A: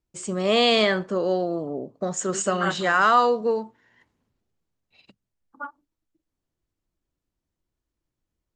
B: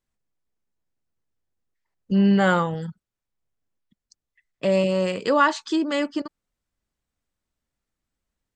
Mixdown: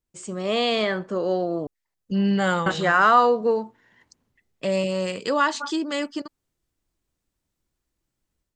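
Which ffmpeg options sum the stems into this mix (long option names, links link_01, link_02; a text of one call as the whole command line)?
ffmpeg -i stem1.wav -i stem2.wav -filter_complex "[0:a]adynamicequalizer=threshold=0.0178:dfrequency=2800:dqfactor=0.7:tfrequency=2800:tqfactor=0.7:attack=5:release=100:ratio=0.375:range=3:mode=cutabove:tftype=highshelf,volume=-4dB,asplit=3[link_01][link_02][link_03];[link_01]atrim=end=1.67,asetpts=PTS-STARTPTS,afade=type=out:start_time=1.666:duration=0.004:curve=hsin[link_04];[link_02]atrim=start=1.67:end=2.66,asetpts=PTS-STARTPTS,volume=0[link_05];[link_03]atrim=start=2.66,asetpts=PTS-STARTPTS,afade=type=in:duration=0.004:curve=hsin[link_06];[link_04][link_05][link_06]concat=n=3:v=0:a=1[link_07];[1:a]highshelf=frequency=3700:gain=8,volume=-9.5dB[link_08];[link_07][link_08]amix=inputs=2:normalize=0,dynaudnorm=framelen=840:gausssize=3:maxgain=6dB" out.wav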